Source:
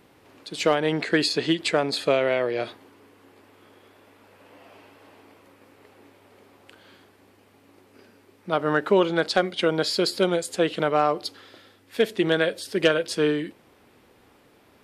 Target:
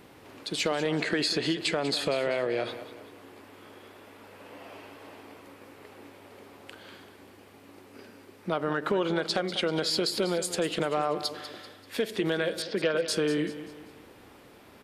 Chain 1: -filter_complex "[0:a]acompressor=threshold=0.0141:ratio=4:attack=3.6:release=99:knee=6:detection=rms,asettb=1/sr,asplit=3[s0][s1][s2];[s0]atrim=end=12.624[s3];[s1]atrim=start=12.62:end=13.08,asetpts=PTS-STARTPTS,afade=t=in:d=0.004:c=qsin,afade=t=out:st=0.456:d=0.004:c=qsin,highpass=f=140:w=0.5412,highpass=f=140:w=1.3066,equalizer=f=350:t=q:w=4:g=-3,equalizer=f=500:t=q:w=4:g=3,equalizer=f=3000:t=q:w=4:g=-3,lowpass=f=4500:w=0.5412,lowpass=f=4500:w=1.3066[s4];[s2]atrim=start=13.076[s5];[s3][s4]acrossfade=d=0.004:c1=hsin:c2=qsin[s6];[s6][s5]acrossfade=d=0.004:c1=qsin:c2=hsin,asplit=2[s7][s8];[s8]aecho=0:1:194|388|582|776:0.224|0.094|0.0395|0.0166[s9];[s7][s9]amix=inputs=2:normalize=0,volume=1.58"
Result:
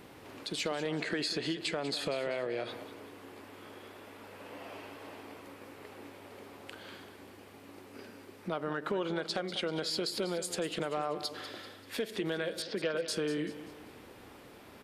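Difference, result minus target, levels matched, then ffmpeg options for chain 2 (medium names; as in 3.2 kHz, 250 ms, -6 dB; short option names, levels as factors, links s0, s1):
compression: peak gain reduction +6.5 dB
-filter_complex "[0:a]acompressor=threshold=0.0376:ratio=4:attack=3.6:release=99:knee=6:detection=rms,asettb=1/sr,asplit=3[s0][s1][s2];[s0]atrim=end=12.624[s3];[s1]atrim=start=12.62:end=13.08,asetpts=PTS-STARTPTS,afade=t=in:d=0.004:c=qsin,afade=t=out:st=0.456:d=0.004:c=qsin,highpass=f=140:w=0.5412,highpass=f=140:w=1.3066,equalizer=f=350:t=q:w=4:g=-3,equalizer=f=500:t=q:w=4:g=3,equalizer=f=3000:t=q:w=4:g=-3,lowpass=f=4500:w=0.5412,lowpass=f=4500:w=1.3066[s4];[s2]atrim=start=13.076[s5];[s3][s4]acrossfade=d=0.004:c1=hsin:c2=qsin[s6];[s6][s5]acrossfade=d=0.004:c1=qsin:c2=hsin,asplit=2[s7][s8];[s8]aecho=0:1:194|388|582|776:0.224|0.094|0.0395|0.0166[s9];[s7][s9]amix=inputs=2:normalize=0,volume=1.58"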